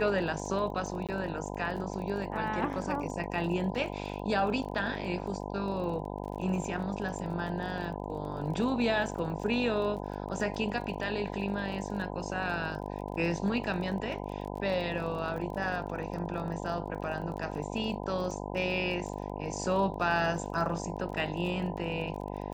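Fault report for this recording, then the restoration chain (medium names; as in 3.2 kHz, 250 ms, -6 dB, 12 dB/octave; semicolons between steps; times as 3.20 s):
buzz 50 Hz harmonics 20 -38 dBFS
crackle 26 per s -39 dBFS
1.07–1.09 s: dropout 17 ms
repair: de-click; de-hum 50 Hz, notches 20; interpolate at 1.07 s, 17 ms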